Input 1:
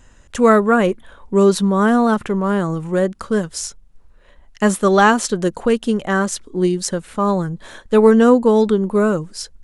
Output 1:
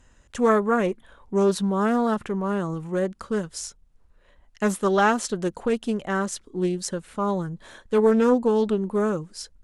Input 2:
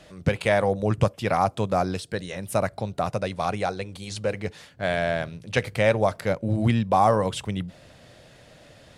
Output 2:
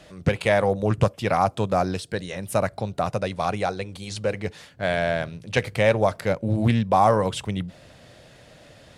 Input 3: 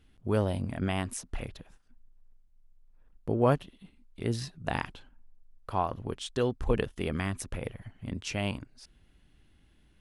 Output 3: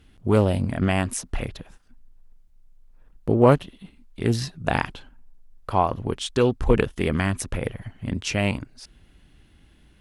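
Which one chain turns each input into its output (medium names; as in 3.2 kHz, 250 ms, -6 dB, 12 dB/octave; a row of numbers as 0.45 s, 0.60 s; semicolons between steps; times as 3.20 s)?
Chebyshev shaper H 2 -32 dB, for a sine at -1 dBFS; loudspeaker Doppler distortion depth 0.18 ms; normalise loudness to -24 LUFS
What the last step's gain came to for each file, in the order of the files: -7.5 dB, +1.5 dB, +8.5 dB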